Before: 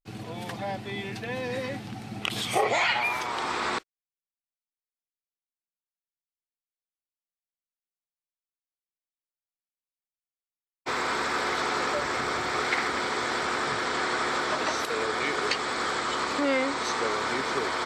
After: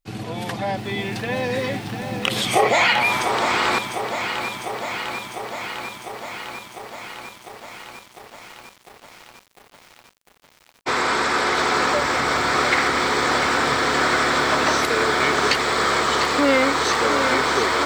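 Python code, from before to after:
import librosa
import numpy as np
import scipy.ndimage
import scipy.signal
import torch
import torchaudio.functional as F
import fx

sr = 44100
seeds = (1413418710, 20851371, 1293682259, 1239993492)

p1 = np.clip(x, -10.0 ** (-20.0 / 20.0), 10.0 ** (-20.0 / 20.0))
p2 = x + (p1 * librosa.db_to_amplitude(-11.0))
p3 = fx.echo_crushed(p2, sr, ms=701, feedback_pct=80, bits=8, wet_db=-8.0)
y = p3 * librosa.db_to_amplitude(5.5)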